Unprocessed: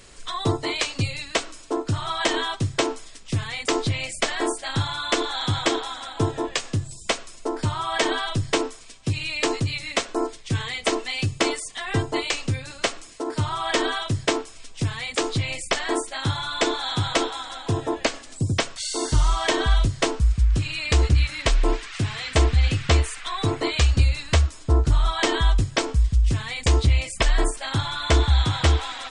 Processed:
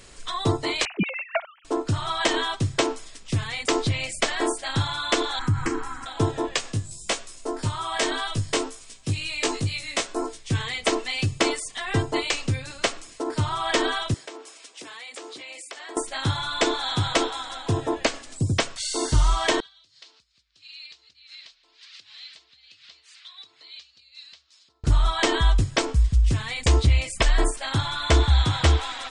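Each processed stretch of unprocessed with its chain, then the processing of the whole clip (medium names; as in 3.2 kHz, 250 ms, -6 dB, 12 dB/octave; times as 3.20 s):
0.85–1.65 s: formants replaced by sine waves + treble shelf 2.5 kHz -7.5 dB
5.39–6.06 s: bass shelf 370 Hz +11 dB + static phaser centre 1.5 kHz, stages 4 + compression 2:1, threshold -23 dBFS
6.72–10.50 s: treble shelf 7.4 kHz +10 dB + chorus 1.9 Hz, delay 17.5 ms, depth 2.4 ms
14.14–15.97 s: high-pass 310 Hz 24 dB/octave + compression 5:1, threshold -37 dBFS
19.60–24.84 s: compression 16:1, threshold -30 dBFS + band-pass filter 4.3 kHz, Q 2.9 + distance through air 52 m
whole clip: none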